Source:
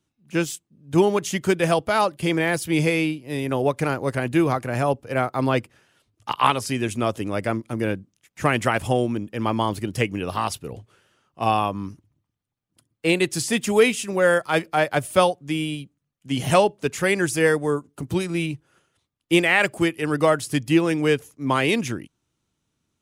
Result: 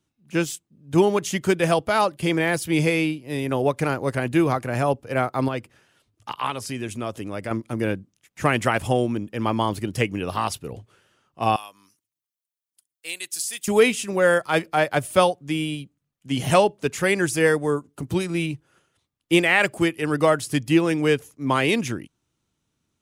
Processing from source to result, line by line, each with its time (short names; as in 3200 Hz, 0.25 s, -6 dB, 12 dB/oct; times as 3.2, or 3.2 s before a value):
5.48–7.51 compressor 1.5:1, threshold -35 dBFS
11.56–13.68 differentiator